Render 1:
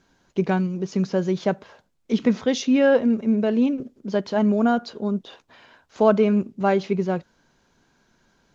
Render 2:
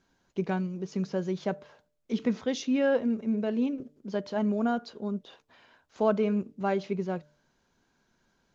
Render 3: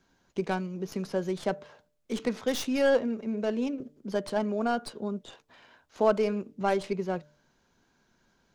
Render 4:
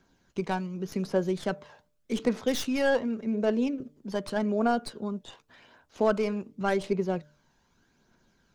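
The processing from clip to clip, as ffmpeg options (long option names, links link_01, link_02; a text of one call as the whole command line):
ffmpeg -i in.wav -af "bandreject=frequency=148.7:width_type=h:width=4,bandreject=frequency=297.4:width_type=h:width=4,bandreject=frequency=446.1:width_type=h:width=4,bandreject=frequency=594.8:width_type=h:width=4,volume=-8dB" out.wav
ffmpeg -i in.wav -filter_complex "[0:a]acrossover=split=320|1700[link_01][link_02][link_03];[link_01]acompressor=threshold=-37dB:ratio=6[link_04];[link_03]aeval=exprs='0.0447*(cos(1*acos(clip(val(0)/0.0447,-1,1)))-cos(1*PI/2))+0.01*(cos(8*acos(clip(val(0)/0.0447,-1,1)))-cos(8*PI/2))':channel_layout=same[link_05];[link_04][link_02][link_05]amix=inputs=3:normalize=0,volume=2.5dB" out.wav
ffmpeg -i in.wav -af "aphaser=in_gain=1:out_gain=1:delay=1.2:decay=0.35:speed=0.86:type=triangular" out.wav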